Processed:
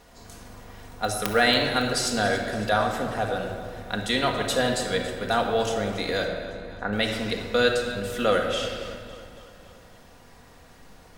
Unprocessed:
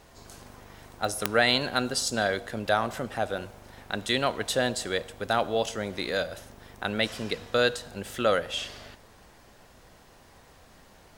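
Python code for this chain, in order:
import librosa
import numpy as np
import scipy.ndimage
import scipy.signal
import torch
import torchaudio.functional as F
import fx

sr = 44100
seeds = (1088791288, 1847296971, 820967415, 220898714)

p1 = fx.steep_lowpass(x, sr, hz=2000.0, slope=48, at=(6.25, 6.93))
p2 = p1 + fx.echo_feedback(p1, sr, ms=279, feedback_pct=57, wet_db=-16.0, dry=0)
y = fx.room_shoebox(p2, sr, seeds[0], volume_m3=2300.0, walls='mixed', distance_m=1.8)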